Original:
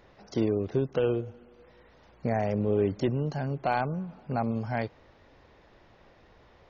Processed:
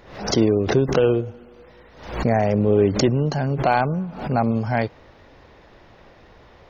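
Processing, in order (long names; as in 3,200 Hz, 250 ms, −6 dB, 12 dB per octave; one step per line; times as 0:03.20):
background raised ahead of every attack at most 94 dB per second
level +8.5 dB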